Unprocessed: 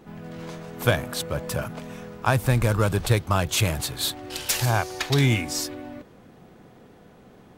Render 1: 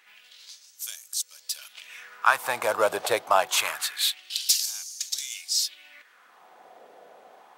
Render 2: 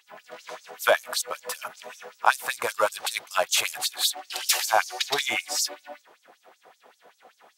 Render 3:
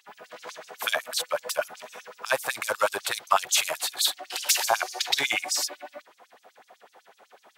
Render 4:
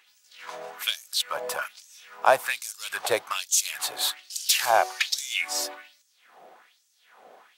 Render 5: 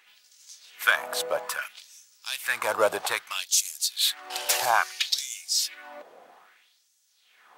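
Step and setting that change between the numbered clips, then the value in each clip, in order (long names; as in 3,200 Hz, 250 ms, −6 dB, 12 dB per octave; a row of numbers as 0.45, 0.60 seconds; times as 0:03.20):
auto-filter high-pass, speed: 0.25, 5.2, 8, 1.2, 0.61 Hertz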